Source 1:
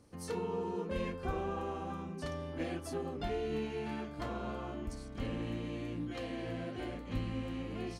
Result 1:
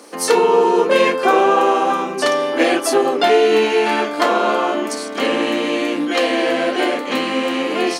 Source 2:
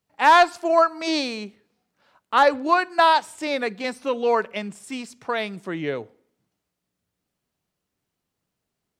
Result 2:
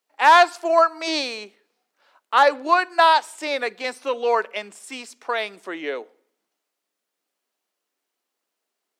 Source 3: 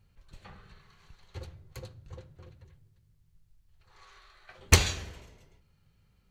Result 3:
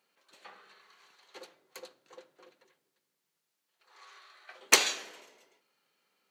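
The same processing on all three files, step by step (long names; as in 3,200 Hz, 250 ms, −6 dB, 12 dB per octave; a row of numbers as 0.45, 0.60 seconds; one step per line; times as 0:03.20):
Bessel high-pass filter 440 Hz, order 6
normalise the peak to −2 dBFS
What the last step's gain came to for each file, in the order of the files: +27.0, +2.0, +2.0 decibels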